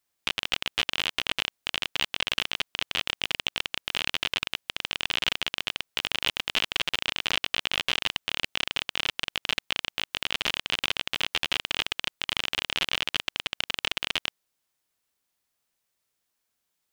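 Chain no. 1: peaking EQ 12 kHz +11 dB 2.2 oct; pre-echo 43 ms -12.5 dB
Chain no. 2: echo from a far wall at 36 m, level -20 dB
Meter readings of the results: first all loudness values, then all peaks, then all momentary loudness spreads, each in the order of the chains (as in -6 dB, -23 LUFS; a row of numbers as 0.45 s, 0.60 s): -24.5 LUFS, -28.5 LUFS; -1.0 dBFS, -5.5 dBFS; 4 LU, 4 LU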